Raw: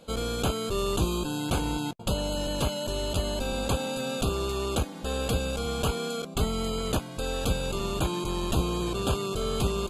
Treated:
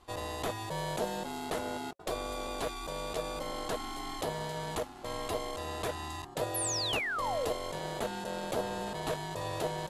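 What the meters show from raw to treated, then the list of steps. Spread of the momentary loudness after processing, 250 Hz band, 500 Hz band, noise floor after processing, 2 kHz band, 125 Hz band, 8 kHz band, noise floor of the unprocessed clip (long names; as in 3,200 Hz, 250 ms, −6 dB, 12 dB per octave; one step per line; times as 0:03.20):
7 LU, −10.5 dB, −5.5 dB, −47 dBFS, −1.0 dB, −12.5 dB, −3.5 dB, −40 dBFS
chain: ring modulation 550 Hz
sound drawn into the spectrogram fall, 0:06.54–0:07.49, 410–12,000 Hz −29 dBFS
level −5 dB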